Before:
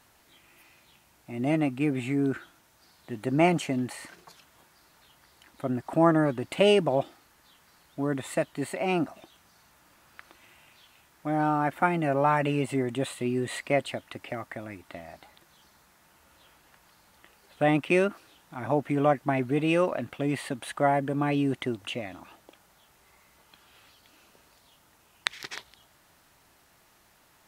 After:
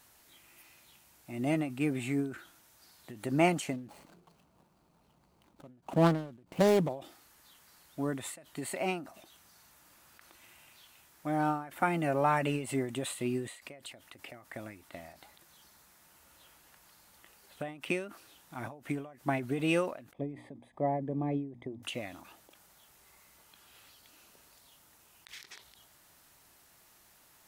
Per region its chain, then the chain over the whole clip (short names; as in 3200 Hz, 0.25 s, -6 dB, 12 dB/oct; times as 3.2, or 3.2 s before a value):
3.73–6.89 median filter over 25 samples + bell 180 Hz +8 dB 0.6 oct + Doppler distortion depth 0.3 ms
20.13–21.83 running mean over 31 samples + notches 60/120/180/240/300 Hz
whole clip: high shelf 5200 Hz +9 dB; ending taper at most 110 dB/s; gain -4 dB